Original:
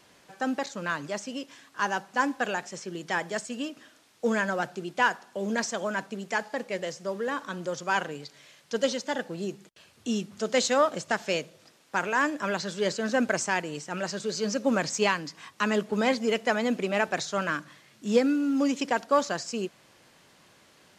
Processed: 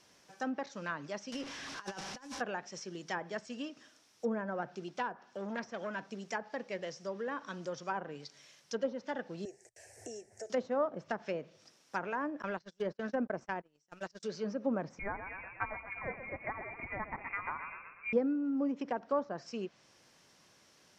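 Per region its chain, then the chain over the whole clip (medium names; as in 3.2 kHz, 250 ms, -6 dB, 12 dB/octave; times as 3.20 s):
1.32–2.41 s: one-bit delta coder 64 kbps, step -35.5 dBFS + treble shelf 4.5 kHz +8.5 dB + compressor with a negative ratio -33 dBFS, ratio -0.5
4.88–6.05 s: treble shelf 7.8 kHz -5 dB + transformer saturation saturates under 1.9 kHz
9.45–10.50 s: FFT filter 120 Hz 0 dB, 170 Hz -30 dB, 260 Hz -16 dB, 390 Hz -3 dB, 740 Hz +4 dB, 1.2 kHz -26 dB, 1.8 kHz +2 dB, 3.4 kHz -27 dB, 8.1 kHz +3 dB, 13 kHz -8 dB + three bands compressed up and down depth 100%
12.42–14.23 s: companding laws mixed up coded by A + gate -33 dBFS, range -30 dB
14.99–18.13 s: frequency-shifting echo 123 ms, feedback 57%, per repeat -31 Hz, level -9 dB + frequency inversion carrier 2.6 kHz
whole clip: peaking EQ 5.6 kHz +10 dB 0.33 oct; low-pass that closes with the level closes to 960 Hz, closed at -22.5 dBFS; trim -7.5 dB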